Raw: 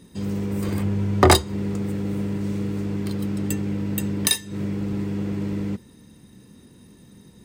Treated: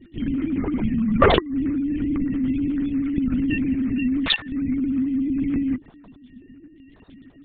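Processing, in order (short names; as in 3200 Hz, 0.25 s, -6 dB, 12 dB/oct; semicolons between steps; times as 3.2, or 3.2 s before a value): sine-wave speech; low shelf 190 Hz +3.5 dB; soft clip -3.5 dBFS, distortion -27 dB; LPC vocoder at 8 kHz whisper; gain +1 dB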